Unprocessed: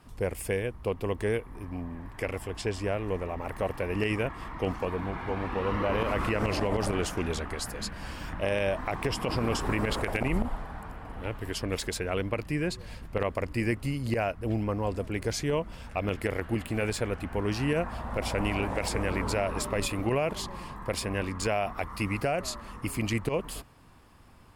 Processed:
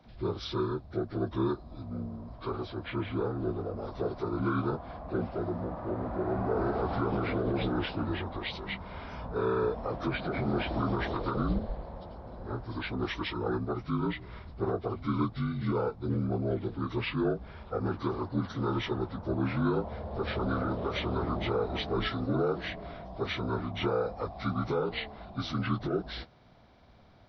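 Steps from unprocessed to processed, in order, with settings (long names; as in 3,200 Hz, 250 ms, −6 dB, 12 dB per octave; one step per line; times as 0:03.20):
partials spread apart or drawn together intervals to 77%
speed change −10%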